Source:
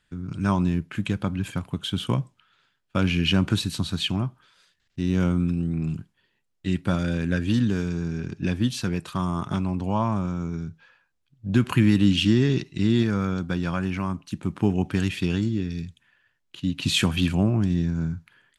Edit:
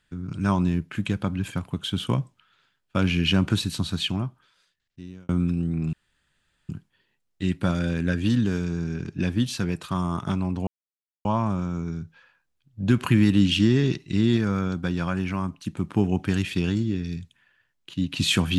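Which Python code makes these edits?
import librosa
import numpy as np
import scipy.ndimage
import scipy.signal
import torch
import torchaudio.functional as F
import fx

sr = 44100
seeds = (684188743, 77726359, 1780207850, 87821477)

y = fx.edit(x, sr, fx.fade_out_span(start_s=3.97, length_s=1.32),
    fx.insert_room_tone(at_s=5.93, length_s=0.76),
    fx.insert_silence(at_s=9.91, length_s=0.58), tone=tone)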